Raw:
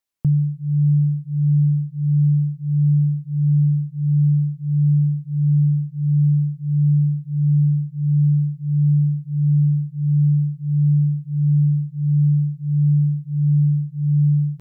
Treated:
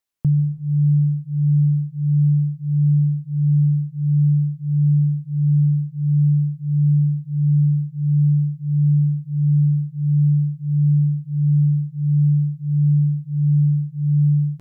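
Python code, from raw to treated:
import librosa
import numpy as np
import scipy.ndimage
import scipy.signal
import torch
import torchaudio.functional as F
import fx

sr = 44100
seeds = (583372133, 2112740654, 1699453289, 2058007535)

y = fx.rev_plate(x, sr, seeds[0], rt60_s=1.0, hf_ratio=0.45, predelay_ms=120, drr_db=16.0)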